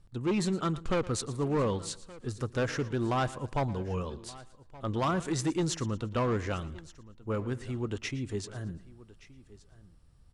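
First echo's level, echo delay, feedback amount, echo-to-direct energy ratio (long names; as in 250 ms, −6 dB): −18.0 dB, 115 ms, repeats not evenly spaced, −15.5 dB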